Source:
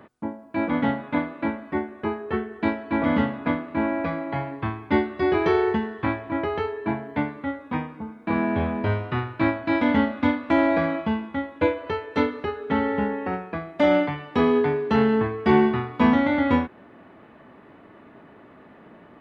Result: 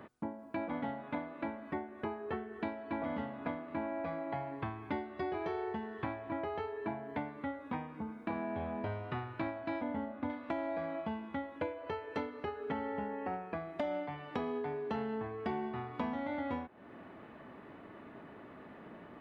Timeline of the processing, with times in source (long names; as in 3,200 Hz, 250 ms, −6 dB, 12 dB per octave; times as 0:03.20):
0:09.81–0:10.30: low-pass filter 1,100 Hz 6 dB per octave
0:11.56–0:13.57: notch filter 3,700 Hz
whole clip: dynamic equaliser 720 Hz, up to +8 dB, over −40 dBFS, Q 2.1; downward compressor 6 to 1, threshold −33 dBFS; level −3 dB